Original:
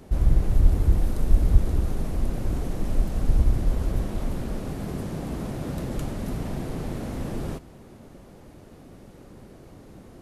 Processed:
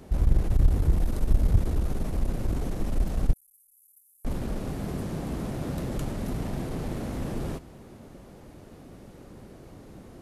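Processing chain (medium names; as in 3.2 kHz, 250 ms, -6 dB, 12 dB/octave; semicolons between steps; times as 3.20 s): single-diode clipper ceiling -19 dBFS; 3.33–4.25 s: inverse Chebyshev high-pass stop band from 2.9 kHz, stop band 70 dB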